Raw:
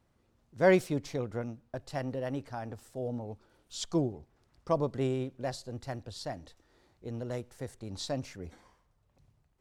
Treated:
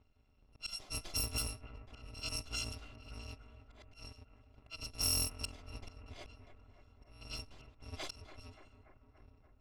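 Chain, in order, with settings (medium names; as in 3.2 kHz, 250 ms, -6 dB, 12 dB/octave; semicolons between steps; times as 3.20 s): bit-reversed sample order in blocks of 256 samples; low-pass 4 kHz 6 dB/octave; peaking EQ 1.7 kHz -8 dB 0.71 oct; slow attack 516 ms; level-controlled noise filter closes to 2.5 kHz, open at -36.5 dBFS; bucket-brigade echo 288 ms, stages 4096, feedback 67%, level -11 dB; trim +7 dB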